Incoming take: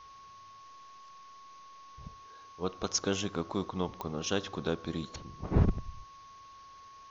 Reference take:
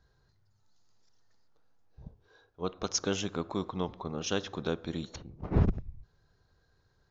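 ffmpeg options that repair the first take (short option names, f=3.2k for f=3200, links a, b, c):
-af "adeclick=t=4,bandreject=f=1.1k:w=30,afftdn=nr=17:nf=-53"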